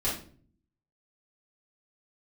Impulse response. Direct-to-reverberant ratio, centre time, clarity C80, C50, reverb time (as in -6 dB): -8.5 dB, 35 ms, 11.0 dB, 4.5 dB, 0.45 s